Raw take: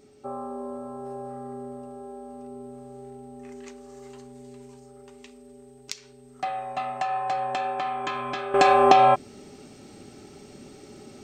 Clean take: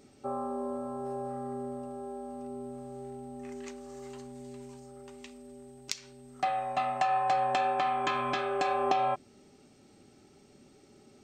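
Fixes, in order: notch 420 Hz, Q 30; gain 0 dB, from 8.54 s -12 dB

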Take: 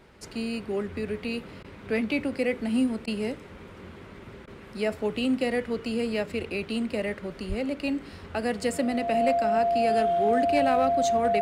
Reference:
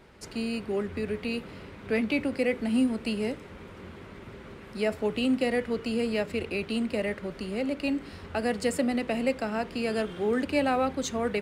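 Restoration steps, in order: clip repair -15.5 dBFS; notch 690 Hz, Q 30; de-plosive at 7.48; interpolate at 1.63/3.06/4.46, 13 ms

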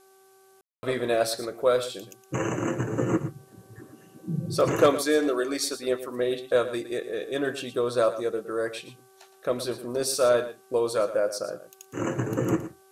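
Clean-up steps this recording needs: de-hum 384.5 Hz, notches 4; room tone fill 0.61–0.83; expander -49 dBFS, range -21 dB; inverse comb 0.115 s -13 dB

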